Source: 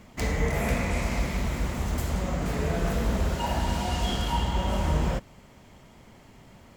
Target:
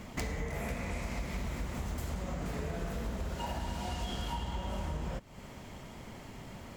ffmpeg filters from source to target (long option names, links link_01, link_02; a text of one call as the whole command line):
ffmpeg -i in.wav -af "acompressor=threshold=-38dB:ratio=10,volume=4.5dB" out.wav